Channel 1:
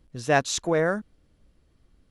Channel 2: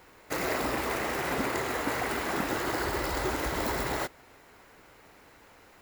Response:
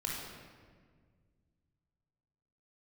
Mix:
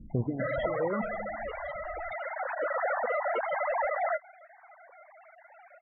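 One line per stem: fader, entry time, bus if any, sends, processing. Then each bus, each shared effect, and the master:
+2.5 dB, 0.00 s, send -14 dB, limiter -18 dBFS, peak gain reduction 10 dB; negative-ratio compressor -36 dBFS, ratio -1; stepped low-pass 7.5 Hz 220–2300 Hz
+2.0 dB, 0.10 s, no send, sine-wave speech; bell 330 Hz +13.5 dB 0.53 oct; wavefolder -25 dBFS; auto duck -8 dB, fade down 1.40 s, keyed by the first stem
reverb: on, RT60 1.7 s, pre-delay 21 ms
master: loudest bins only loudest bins 32

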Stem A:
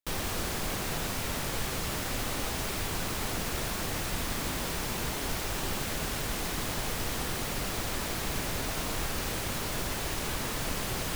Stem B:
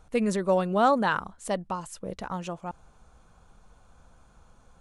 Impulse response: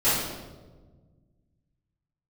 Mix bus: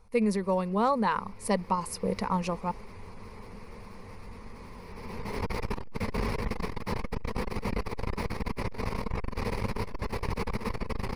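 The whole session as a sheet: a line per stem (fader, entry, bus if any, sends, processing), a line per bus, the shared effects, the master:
+1.0 dB, 0.15 s, no send, spectral gate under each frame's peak -25 dB strong; LPF 1200 Hz 6 dB/oct; auto duck -16 dB, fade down 0.30 s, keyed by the second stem
+0.5 dB, 0.00 s, no send, dry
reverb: off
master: ripple EQ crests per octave 0.88, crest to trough 11 dB; vocal rider within 5 dB 0.5 s; core saturation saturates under 140 Hz

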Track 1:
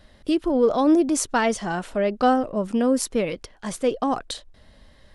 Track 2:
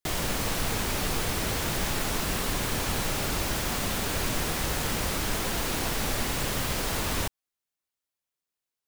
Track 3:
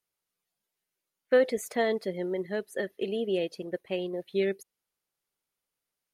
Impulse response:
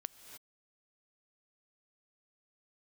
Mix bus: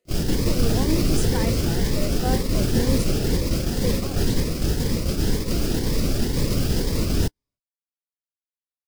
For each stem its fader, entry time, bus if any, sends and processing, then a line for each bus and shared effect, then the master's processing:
-7.5 dB, 0.00 s, no bus, no send, dry
+2.5 dB, 0.00 s, bus A, send -14.5 dB, low shelf 430 Hz +6.5 dB; bell 5000 Hz +8.5 dB 0.32 oct
-5.5 dB, 0.00 s, bus A, no send, per-bin compression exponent 0.2; bell 210 Hz -14.5 dB 2.8 oct
bus A: 0.0 dB, resonant low shelf 600 Hz +7.5 dB, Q 1.5; limiter -11.5 dBFS, peak gain reduction 8.5 dB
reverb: on, pre-delay 3 ms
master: gate -18 dBFS, range -37 dB; cascading phaser rising 2 Hz

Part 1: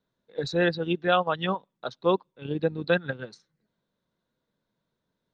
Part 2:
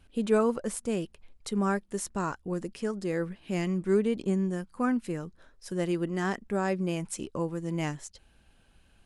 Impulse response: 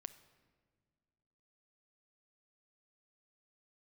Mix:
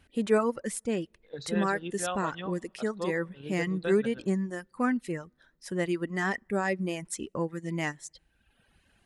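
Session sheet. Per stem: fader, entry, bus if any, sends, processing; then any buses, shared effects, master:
-5.0 dB, 0.95 s, send -10 dB, auto duck -10 dB, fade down 1.60 s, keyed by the second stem
+0.5 dB, 0.00 s, send -21.5 dB, HPF 66 Hz 6 dB/oct; reverb removal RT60 0.94 s; bell 1900 Hz +9.5 dB 0.25 oct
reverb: on, pre-delay 7 ms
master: dry

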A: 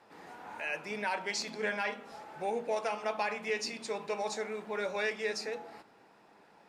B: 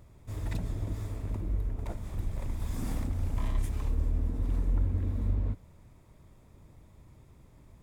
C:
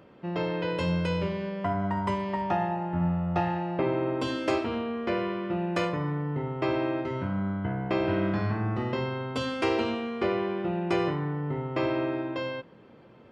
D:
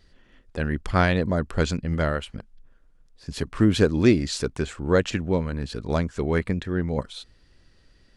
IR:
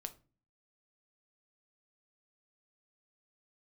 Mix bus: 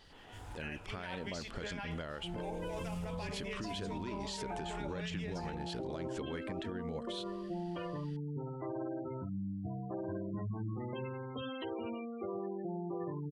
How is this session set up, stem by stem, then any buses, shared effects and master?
-5.5 dB, 0.00 s, bus A, no send, harmonic tremolo 7.2 Hz, depth 50%, crossover 1500 Hz
-14.5 dB, 0.05 s, bus B, no send, band shelf 6500 Hz +8.5 dB
-9.0 dB, 2.00 s, bus A, no send, self-modulated delay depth 0.27 ms; spectral gate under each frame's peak -15 dB strong
0.0 dB, 0.00 s, bus B, no send, compressor, threshold -23 dBFS, peak gain reduction 11 dB; low shelf 140 Hz -9.5 dB
bus A: 0.0 dB, limiter -30.5 dBFS, peak gain reduction 5.5 dB
bus B: 0.0 dB, compressor 2:1, threshold -42 dBFS, peak gain reduction 10.5 dB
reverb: off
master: bell 3100 Hz +8.5 dB 0.37 oct; limiter -31.5 dBFS, peak gain reduction 11 dB

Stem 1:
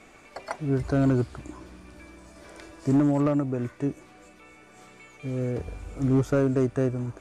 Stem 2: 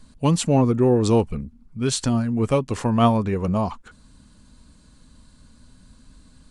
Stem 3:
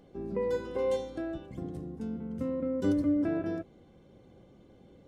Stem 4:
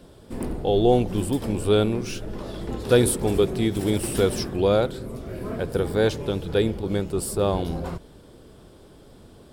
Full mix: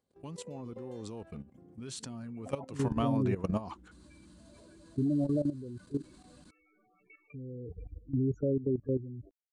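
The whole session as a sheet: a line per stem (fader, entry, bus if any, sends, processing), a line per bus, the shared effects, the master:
-4.0 dB, 2.10 s, no bus, no send, loudest bins only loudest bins 8
1.06 s -19.5 dB -> 1.39 s -9.5 dB -> 2.61 s -9.5 dB -> 3.27 s -1.5 dB, 0.00 s, bus A, no send, dry
-12.5 dB, 0.00 s, bus A, no send, stepped notch 2.2 Hz 230–6500 Hz
off
bus A: 0.0 dB, HPF 92 Hz 12 dB/oct; compressor 5:1, threshold -26 dBFS, peak gain reduction 9.5 dB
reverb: off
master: level quantiser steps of 14 dB

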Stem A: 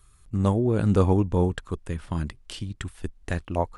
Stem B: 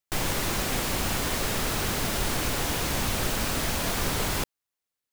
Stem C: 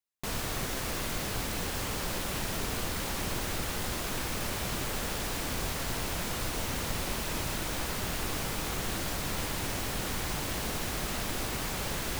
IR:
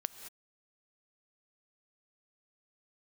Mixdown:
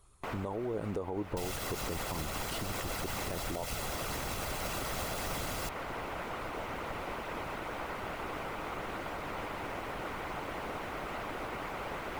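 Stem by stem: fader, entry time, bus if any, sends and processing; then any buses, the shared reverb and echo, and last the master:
-9.5 dB, 0.00 s, bus A, no send, band shelf 610 Hz +9.5 dB
-12.5 dB, 1.25 s, no bus, no send, minimum comb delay 1.5 ms
-4.0 dB, 0.00 s, bus A, no send, three-band isolator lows -12 dB, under 400 Hz, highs -22 dB, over 2300 Hz
bus A: 0.0 dB, bell 300 Hz +3.5 dB 0.37 oct; compressor 5:1, threshold -35 dBFS, peak gain reduction 15.5 dB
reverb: off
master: notch 1700 Hz, Q 12; harmonic-percussive split percussive +8 dB; limiter -26.5 dBFS, peak gain reduction 10 dB

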